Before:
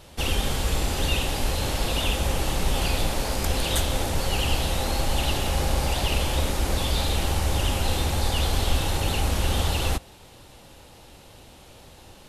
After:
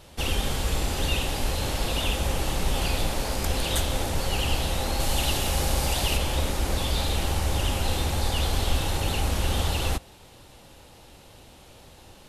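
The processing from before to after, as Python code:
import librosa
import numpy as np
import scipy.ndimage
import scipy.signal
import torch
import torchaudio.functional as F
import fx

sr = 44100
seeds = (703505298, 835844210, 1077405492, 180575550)

y = fx.high_shelf(x, sr, hz=4300.0, db=6.5, at=(5.0, 6.17))
y = F.gain(torch.from_numpy(y), -1.5).numpy()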